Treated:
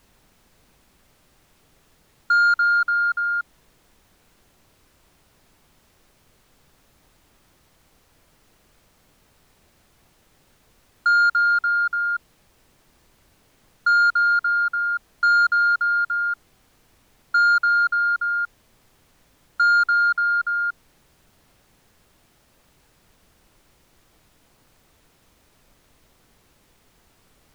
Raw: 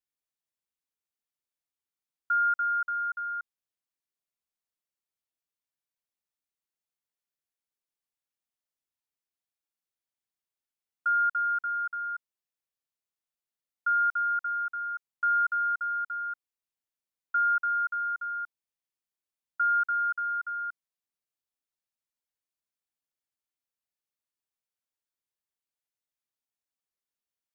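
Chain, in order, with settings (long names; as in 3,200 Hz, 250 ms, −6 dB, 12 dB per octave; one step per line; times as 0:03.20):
parametric band 1,300 Hz +6.5 dB 0.36 octaves
soft clipping −19 dBFS, distortion −18 dB
background noise pink −66 dBFS
level +6.5 dB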